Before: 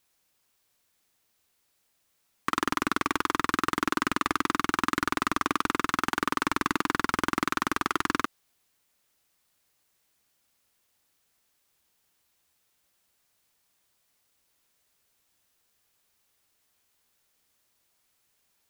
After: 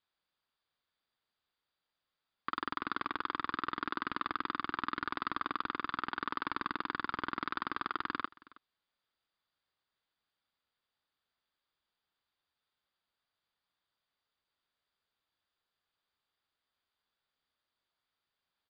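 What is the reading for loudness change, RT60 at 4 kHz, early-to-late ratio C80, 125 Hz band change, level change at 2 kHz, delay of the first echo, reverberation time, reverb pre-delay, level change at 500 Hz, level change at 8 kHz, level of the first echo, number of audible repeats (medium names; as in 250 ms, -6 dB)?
-9.5 dB, no reverb, no reverb, -13.5 dB, -9.5 dB, 320 ms, no reverb, no reverb, -12.5 dB, under -40 dB, -22.0 dB, 1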